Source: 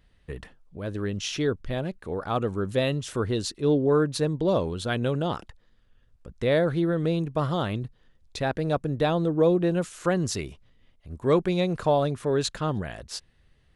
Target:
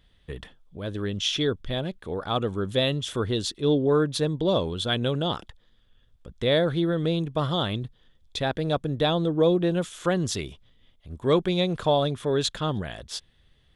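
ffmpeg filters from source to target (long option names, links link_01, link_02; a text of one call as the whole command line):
ffmpeg -i in.wav -af "equalizer=frequency=3400:width_type=o:width=0.23:gain=13" out.wav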